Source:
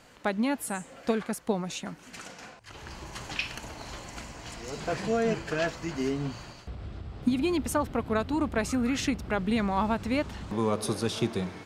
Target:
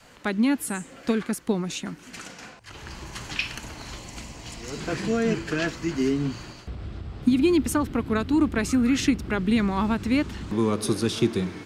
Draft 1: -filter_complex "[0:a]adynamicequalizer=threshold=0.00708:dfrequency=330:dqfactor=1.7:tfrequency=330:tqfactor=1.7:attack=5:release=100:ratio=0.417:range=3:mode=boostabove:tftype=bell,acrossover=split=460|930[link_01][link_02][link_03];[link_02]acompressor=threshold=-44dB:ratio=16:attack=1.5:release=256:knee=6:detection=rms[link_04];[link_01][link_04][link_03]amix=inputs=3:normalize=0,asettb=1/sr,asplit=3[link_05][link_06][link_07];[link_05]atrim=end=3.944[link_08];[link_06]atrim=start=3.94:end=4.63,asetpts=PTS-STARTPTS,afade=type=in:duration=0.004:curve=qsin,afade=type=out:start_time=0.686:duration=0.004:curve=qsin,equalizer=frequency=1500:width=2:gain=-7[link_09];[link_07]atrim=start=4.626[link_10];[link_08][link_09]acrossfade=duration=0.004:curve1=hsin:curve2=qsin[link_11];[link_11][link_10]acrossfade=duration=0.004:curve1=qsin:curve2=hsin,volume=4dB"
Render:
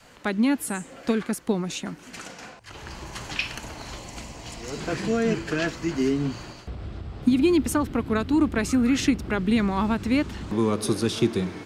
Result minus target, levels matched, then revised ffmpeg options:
downward compressor: peak gain reduction −11 dB
-filter_complex "[0:a]adynamicequalizer=threshold=0.00708:dfrequency=330:dqfactor=1.7:tfrequency=330:tqfactor=1.7:attack=5:release=100:ratio=0.417:range=3:mode=boostabove:tftype=bell,acrossover=split=460|930[link_01][link_02][link_03];[link_02]acompressor=threshold=-56dB:ratio=16:attack=1.5:release=256:knee=6:detection=rms[link_04];[link_01][link_04][link_03]amix=inputs=3:normalize=0,asettb=1/sr,asplit=3[link_05][link_06][link_07];[link_05]atrim=end=3.944[link_08];[link_06]atrim=start=3.94:end=4.63,asetpts=PTS-STARTPTS,afade=type=in:duration=0.004:curve=qsin,afade=type=out:start_time=0.686:duration=0.004:curve=qsin,equalizer=frequency=1500:width=2:gain=-7[link_09];[link_07]atrim=start=4.626[link_10];[link_08][link_09]acrossfade=duration=0.004:curve1=hsin:curve2=qsin[link_11];[link_11][link_10]acrossfade=duration=0.004:curve1=qsin:curve2=hsin,volume=4dB"

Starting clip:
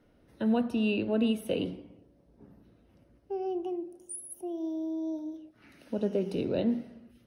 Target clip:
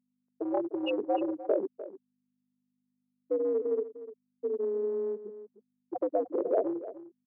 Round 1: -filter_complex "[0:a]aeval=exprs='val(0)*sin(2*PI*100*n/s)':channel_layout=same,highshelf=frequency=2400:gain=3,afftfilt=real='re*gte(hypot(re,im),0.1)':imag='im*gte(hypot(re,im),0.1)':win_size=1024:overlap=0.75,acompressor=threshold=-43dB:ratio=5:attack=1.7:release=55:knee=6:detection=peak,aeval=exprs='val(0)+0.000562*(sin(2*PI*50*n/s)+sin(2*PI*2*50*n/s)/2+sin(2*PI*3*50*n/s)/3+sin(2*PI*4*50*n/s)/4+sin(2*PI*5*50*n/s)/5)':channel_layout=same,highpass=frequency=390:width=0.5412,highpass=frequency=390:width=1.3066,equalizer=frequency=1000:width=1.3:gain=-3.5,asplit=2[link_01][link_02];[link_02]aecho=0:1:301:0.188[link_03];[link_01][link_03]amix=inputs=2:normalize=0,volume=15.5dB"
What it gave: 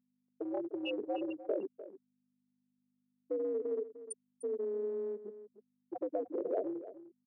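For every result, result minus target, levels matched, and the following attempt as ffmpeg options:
downward compressor: peak gain reduction +5.5 dB; 4,000 Hz band +3.5 dB; 1,000 Hz band −3.0 dB
-filter_complex "[0:a]aeval=exprs='val(0)*sin(2*PI*100*n/s)':channel_layout=same,highshelf=frequency=2400:gain=3,afftfilt=real='re*gte(hypot(re,im),0.1)':imag='im*gte(hypot(re,im),0.1)':win_size=1024:overlap=0.75,acompressor=threshold=-36dB:ratio=5:attack=1.7:release=55:knee=6:detection=peak,aeval=exprs='val(0)+0.000562*(sin(2*PI*50*n/s)+sin(2*PI*2*50*n/s)/2+sin(2*PI*3*50*n/s)/3+sin(2*PI*4*50*n/s)/4+sin(2*PI*5*50*n/s)/5)':channel_layout=same,highpass=frequency=390:width=0.5412,highpass=frequency=390:width=1.3066,equalizer=frequency=1000:width=1.3:gain=-3.5,asplit=2[link_01][link_02];[link_02]aecho=0:1:301:0.188[link_03];[link_01][link_03]amix=inputs=2:normalize=0,volume=15.5dB"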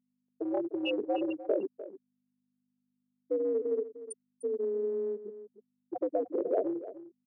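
4,000 Hz band +4.0 dB; 1,000 Hz band −3.0 dB
-filter_complex "[0:a]aeval=exprs='val(0)*sin(2*PI*100*n/s)':channel_layout=same,afftfilt=real='re*gte(hypot(re,im),0.1)':imag='im*gte(hypot(re,im),0.1)':win_size=1024:overlap=0.75,acompressor=threshold=-36dB:ratio=5:attack=1.7:release=55:knee=6:detection=peak,aeval=exprs='val(0)+0.000562*(sin(2*PI*50*n/s)+sin(2*PI*2*50*n/s)/2+sin(2*PI*3*50*n/s)/3+sin(2*PI*4*50*n/s)/4+sin(2*PI*5*50*n/s)/5)':channel_layout=same,highpass=frequency=390:width=0.5412,highpass=frequency=390:width=1.3066,equalizer=frequency=1000:width=1.3:gain=-3.5,asplit=2[link_01][link_02];[link_02]aecho=0:1:301:0.188[link_03];[link_01][link_03]amix=inputs=2:normalize=0,volume=15.5dB"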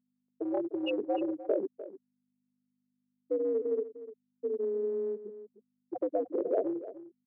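1,000 Hz band −3.5 dB
-filter_complex "[0:a]aeval=exprs='val(0)*sin(2*PI*100*n/s)':channel_layout=same,afftfilt=real='re*gte(hypot(re,im),0.1)':imag='im*gte(hypot(re,im),0.1)':win_size=1024:overlap=0.75,acompressor=threshold=-36dB:ratio=5:attack=1.7:release=55:knee=6:detection=peak,aeval=exprs='val(0)+0.000562*(sin(2*PI*50*n/s)+sin(2*PI*2*50*n/s)/2+sin(2*PI*3*50*n/s)/3+sin(2*PI*4*50*n/s)/4+sin(2*PI*5*50*n/s)/5)':channel_layout=same,highpass=frequency=390:width=0.5412,highpass=frequency=390:width=1.3066,equalizer=frequency=1000:width=1.3:gain=4,asplit=2[link_01][link_02];[link_02]aecho=0:1:301:0.188[link_03];[link_01][link_03]amix=inputs=2:normalize=0,volume=15.5dB"

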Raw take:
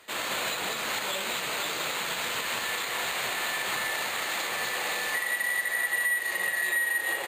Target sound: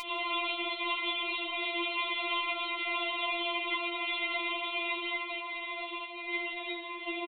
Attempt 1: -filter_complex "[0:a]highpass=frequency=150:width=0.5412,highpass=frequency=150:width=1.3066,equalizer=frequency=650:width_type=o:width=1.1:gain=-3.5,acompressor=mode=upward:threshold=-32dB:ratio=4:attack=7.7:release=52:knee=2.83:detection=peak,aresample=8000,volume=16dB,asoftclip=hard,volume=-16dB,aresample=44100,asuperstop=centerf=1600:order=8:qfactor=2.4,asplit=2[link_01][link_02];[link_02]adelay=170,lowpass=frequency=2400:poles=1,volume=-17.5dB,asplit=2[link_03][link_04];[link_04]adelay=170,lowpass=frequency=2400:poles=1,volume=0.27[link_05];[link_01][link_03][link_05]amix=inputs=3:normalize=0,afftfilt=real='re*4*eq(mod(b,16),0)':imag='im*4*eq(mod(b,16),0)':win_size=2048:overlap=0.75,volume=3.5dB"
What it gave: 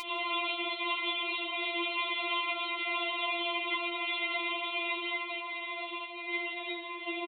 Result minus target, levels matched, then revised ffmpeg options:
125 Hz band −3.5 dB
-filter_complex "[0:a]equalizer=frequency=650:width_type=o:width=1.1:gain=-3.5,acompressor=mode=upward:threshold=-32dB:ratio=4:attack=7.7:release=52:knee=2.83:detection=peak,aresample=8000,volume=16dB,asoftclip=hard,volume=-16dB,aresample=44100,asuperstop=centerf=1600:order=8:qfactor=2.4,asplit=2[link_01][link_02];[link_02]adelay=170,lowpass=frequency=2400:poles=1,volume=-17.5dB,asplit=2[link_03][link_04];[link_04]adelay=170,lowpass=frequency=2400:poles=1,volume=0.27[link_05];[link_01][link_03][link_05]amix=inputs=3:normalize=0,afftfilt=real='re*4*eq(mod(b,16),0)':imag='im*4*eq(mod(b,16),0)':win_size=2048:overlap=0.75,volume=3.5dB"

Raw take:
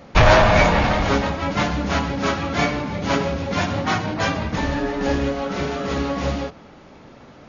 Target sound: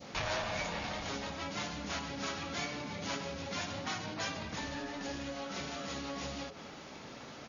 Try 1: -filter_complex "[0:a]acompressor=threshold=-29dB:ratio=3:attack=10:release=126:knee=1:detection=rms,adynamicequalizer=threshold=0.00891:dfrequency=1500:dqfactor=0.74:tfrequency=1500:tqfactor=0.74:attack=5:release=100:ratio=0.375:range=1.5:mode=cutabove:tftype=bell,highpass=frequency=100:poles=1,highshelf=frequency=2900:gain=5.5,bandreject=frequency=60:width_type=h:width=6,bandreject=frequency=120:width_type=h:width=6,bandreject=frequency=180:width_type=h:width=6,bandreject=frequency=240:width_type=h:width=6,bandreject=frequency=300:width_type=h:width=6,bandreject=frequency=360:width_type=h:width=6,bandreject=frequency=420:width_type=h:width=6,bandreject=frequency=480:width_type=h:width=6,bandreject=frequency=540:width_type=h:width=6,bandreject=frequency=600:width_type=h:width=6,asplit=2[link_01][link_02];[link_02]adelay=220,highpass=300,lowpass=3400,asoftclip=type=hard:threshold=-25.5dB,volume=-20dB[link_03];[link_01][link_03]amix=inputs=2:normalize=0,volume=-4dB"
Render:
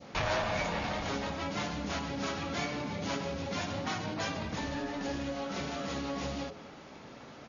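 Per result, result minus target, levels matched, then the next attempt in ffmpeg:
downward compressor: peak gain reduction −5.5 dB; 8,000 Hz band −4.5 dB
-filter_complex "[0:a]acompressor=threshold=-37.5dB:ratio=3:attack=10:release=126:knee=1:detection=rms,adynamicequalizer=threshold=0.00891:dfrequency=1500:dqfactor=0.74:tfrequency=1500:tqfactor=0.74:attack=5:release=100:ratio=0.375:range=1.5:mode=cutabove:tftype=bell,highpass=frequency=100:poles=1,highshelf=frequency=2900:gain=5.5,bandreject=frequency=60:width_type=h:width=6,bandreject=frequency=120:width_type=h:width=6,bandreject=frequency=180:width_type=h:width=6,bandreject=frequency=240:width_type=h:width=6,bandreject=frequency=300:width_type=h:width=6,bandreject=frequency=360:width_type=h:width=6,bandreject=frequency=420:width_type=h:width=6,bandreject=frequency=480:width_type=h:width=6,bandreject=frequency=540:width_type=h:width=6,bandreject=frequency=600:width_type=h:width=6,asplit=2[link_01][link_02];[link_02]adelay=220,highpass=300,lowpass=3400,asoftclip=type=hard:threshold=-25.5dB,volume=-20dB[link_03];[link_01][link_03]amix=inputs=2:normalize=0,volume=-4dB"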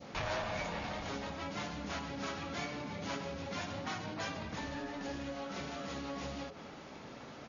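8,000 Hz band −4.5 dB
-filter_complex "[0:a]acompressor=threshold=-37.5dB:ratio=3:attack=10:release=126:knee=1:detection=rms,adynamicequalizer=threshold=0.00891:dfrequency=1500:dqfactor=0.74:tfrequency=1500:tqfactor=0.74:attack=5:release=100:ratio=0.375:range=1.5:mode=cutabove:tftype=bell,highpass=frequency=100:poles=1,highshelf=frequency=2900:gain=13,bandreject=frequency=60:width_type=h:width=6,bandreject=frequency=120:width_type=h:width=6,bandreject=frequency=180:width_type=h:width=6,bandreject=frequency=240:width_type=h:width=6,bandreject=frequency=300:width_type=h:width=6,bandreject=frequency=360:width_type=h:width=6,bandreject=frequency=420:width_type=h:width=6,bandreject=frequency=480:width_type=h:width=6,bandreject=frequency=540:width_type=h:width=6,bandreject=frequency=600:width_type=h:width=6,asplit=2[link_01][link_02];[link_02]adelay=220,highpass=300,lowpass=3400,asoftclip=type=hard:threshold=-25.5dB,volume=-20dB[link_03];[link_01][link_03]amix=inputs=2:normalize=0,volume=-4dB"

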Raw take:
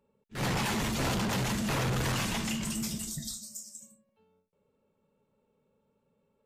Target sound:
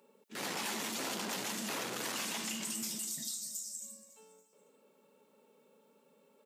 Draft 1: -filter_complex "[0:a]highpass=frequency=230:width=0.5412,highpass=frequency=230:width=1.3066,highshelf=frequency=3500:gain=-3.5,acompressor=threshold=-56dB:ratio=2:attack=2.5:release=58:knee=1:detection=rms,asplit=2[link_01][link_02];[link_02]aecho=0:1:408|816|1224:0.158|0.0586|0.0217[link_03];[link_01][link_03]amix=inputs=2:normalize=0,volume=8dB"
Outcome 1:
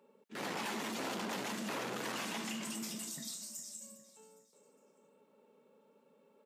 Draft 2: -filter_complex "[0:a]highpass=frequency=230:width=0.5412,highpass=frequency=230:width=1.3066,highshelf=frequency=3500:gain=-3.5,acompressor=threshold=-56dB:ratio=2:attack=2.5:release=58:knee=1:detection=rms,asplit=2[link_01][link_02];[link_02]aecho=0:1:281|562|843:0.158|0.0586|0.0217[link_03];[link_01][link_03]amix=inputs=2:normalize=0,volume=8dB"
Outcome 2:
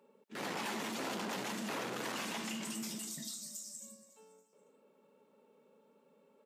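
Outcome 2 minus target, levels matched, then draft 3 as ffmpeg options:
8,000 Hz band −3.5 dB
-filter_complex "[0:a]highpass=frequency=230:width=0.5412,highpass=frequency=230:width=1.3066,highshelf=frequency=3500:gain=7.5,acompressor=threshold=-56dB:ratio=2:attack=2.5:release=58:knee=1:detection=rms,asplit=2[link_01][link_02];[link_02]aecho=0:1:281|562|843:0.158|0.0586|0.0217[link_03];[link_01][link_03]amix=inputs=2:normalize=0,volume=8dB"

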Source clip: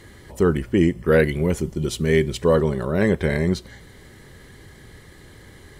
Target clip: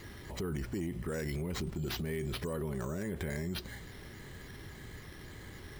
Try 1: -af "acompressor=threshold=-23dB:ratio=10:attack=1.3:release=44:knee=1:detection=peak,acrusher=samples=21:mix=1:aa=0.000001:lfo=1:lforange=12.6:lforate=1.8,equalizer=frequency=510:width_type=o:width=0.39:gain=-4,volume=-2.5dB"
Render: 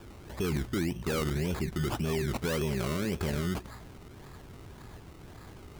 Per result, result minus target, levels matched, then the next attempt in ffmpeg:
downward compressor: peak gain reduction −6 dB; sample-and-hold swept by an LFO: distortion +6 dB
-af "acompressor=threshold=-29.5dB:ratio=10:attack=1.3:release=44:knee=1:detection=peak,acrusher=samples=21:mix=1:aa=0.000001:lfo=1:lforange=12.6:lforate=1.8,equalizer=frequency=510:width_type=o:width=0.39:gain=-4,volume=-2.5dB"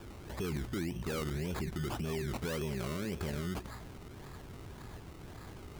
sample-and-hold swept by an LFO: distortion +7 dB
-af "acompressor=threshold=-29.5dB:ratio=10:attack=1.3:release=44:knee=1:detection=peak,acrusher=samples=5:mix=1:aa=0.000001:lfo=1:lforange=3:lforate=1.8,equalizer=frequency=510:width_type=o:width=0.39:gain=-4,volume=-2.5dB"

